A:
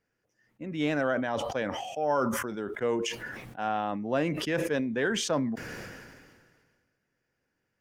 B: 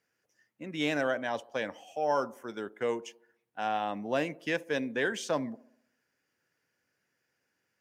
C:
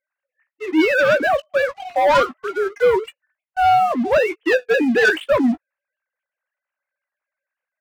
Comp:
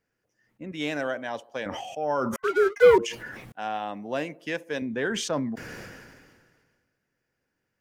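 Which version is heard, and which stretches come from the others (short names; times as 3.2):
A
0.72–1.66 from B
2.36–2.98 from C
3.52–4.82 from B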